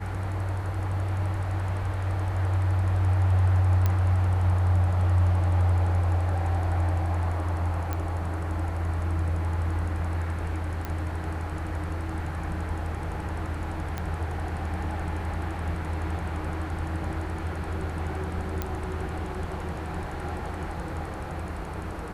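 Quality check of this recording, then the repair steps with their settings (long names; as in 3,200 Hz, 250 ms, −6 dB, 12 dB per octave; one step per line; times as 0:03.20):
0:03.86: click −12 dBFS
0:07.93: click −16 dBFS
0:10.85: click −18 dBFS
0:13.98: click −17 dBFS
0:18.62: click −14 dBFS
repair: click removal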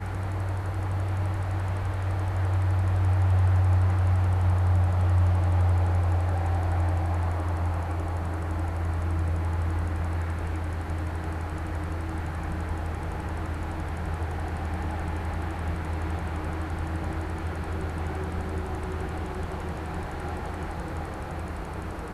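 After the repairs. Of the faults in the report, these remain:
none of them is left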